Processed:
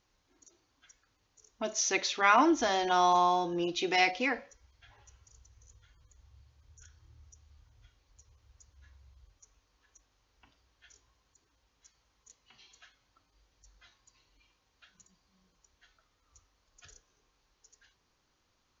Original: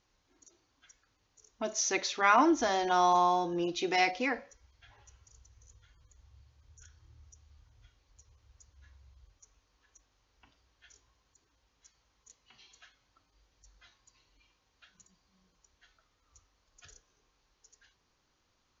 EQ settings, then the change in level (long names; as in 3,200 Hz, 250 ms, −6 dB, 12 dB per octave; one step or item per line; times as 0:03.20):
dynamic equaliser 3,000 Hz, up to +4 dB, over −49 dBFS, Q 1.4
0.0 dB